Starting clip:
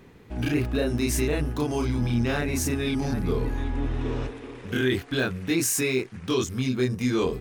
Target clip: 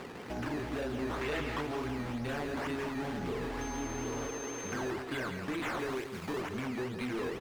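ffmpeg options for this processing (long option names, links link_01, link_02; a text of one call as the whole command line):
ffmpeg -i in.wav -filter_complex "[0:a]acrusher=samples=14:mix=1:aa=0.000001:lfo=1:lforange=14:lforate=2.1,asettb=1/sr,asplit=3[link_01][link_02][link_03];[link_01]atrim=end=5.794[link_04];[link_02]atrim=start=5.79:end=6.41,asetpts=PTS-STARTPTS,afade=type=in:duration=0.004:curve=qsin,afade=type=out:start_time=0.616:duration=0.004:curve=qsin,highshelf=frequency=4500:gain=10[link_05];[link_03]atrim=start=6.406[link_06];[link_04][link_05]acrossfade=duration=0.004:curve1=hsin:curve2=qsin[link_07];[link_07][link_06]acrossfade=duration=0.004:curve1=qsin:curve2=hsin,asplit=2[link_08][link_09];[link_09]highpass=frequency=720:poles=1,volume=23dB,asoftclip=type=tanh:threshold=-13.5dB[link_10];[link_08][link_10]amix=inputs=2:normalize=0,lowpass=frequency=2200:poles=1,volume=-6dB,asettb=1/sr,asplit=3[link_11][link_12][link_13];[link_11]atrim=end=3.614[link_14];[link_12]atrim=start=3.61:end=4.73,asetpts=PTS-STARTPTS,afade=type=in:duration=0.004:curve=qsin,afade=type=out:start_time=1.116:duration=0.004:curve=qsin,aeval=exprs='val(0)+0.0224*sin(2*PI*6300*n/s)':channel_layout=same[link_15];[link_13]atrim=start=4.726[link_16];[link_14][link_15]acrossfade=duration=0.004:curve1=hsin:curve2=qsin[link_17];[link_17][link_16]acrossfade=duration=0.004:curve1=qsin:curve2=hsin,acompressor=threshold=-40dB:ratio=2.5,asettb=1/sr,asplit=3[link_18][link_19][link_20];[link_18]atrim=end=1.214[link_21];[link_19]atrim=start=1.21:end=1.61,asetpts=PTS-STARTPTS,afade=type=in:duration=0.004:curve=qsin,afade=type=out:start_time=0.396:duration=0.004:curve=qsin,equalizer=frequency=2200:width_type=o:width=2.5:gain=6.5[link_22];[link_20]atrim=start=1.606[link_23];[link_21][link_22]acrossfade=duration=0.004:curve1=hsin:curve2=qsin[link_24];[link_24][link_23]acrossfade=duration=0.004:curve1=qsin:curve2=hsin,aecho=1:1:166:0.376,volume=-1.5dB" out.wav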